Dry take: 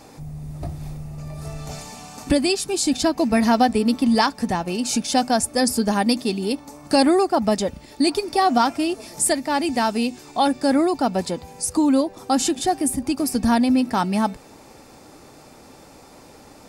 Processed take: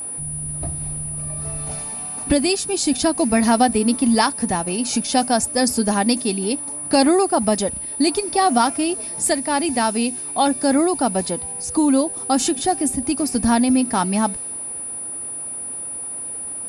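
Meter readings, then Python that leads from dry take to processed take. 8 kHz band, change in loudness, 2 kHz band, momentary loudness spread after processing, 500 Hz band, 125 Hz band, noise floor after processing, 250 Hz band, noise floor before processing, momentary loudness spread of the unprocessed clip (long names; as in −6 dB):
+6.5 dB, +0.5 dB, +1.0 dB, 10 LU, +1.0 dB, +1.0 dB, −30 dBFS, +1.0 dB, −47 dBFS, 16 LU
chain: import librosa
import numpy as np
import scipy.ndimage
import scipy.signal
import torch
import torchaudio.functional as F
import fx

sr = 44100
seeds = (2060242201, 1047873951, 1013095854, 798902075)

y = fx.dmg_crackle(x, sr, seeds[0], per_s=580.0, level_db=-43.0)
y = fx.env_lowpass(y, sr, base_hz=3000.0, full_db=-15.0)
y = y + 10.0 ** (-28.0 / 20.0) * np.sin(2.0 * np.pi * 9800.0 * np.arange(len(y)) / sr)
y = y * 10.0 ** (1.0 / 20.0)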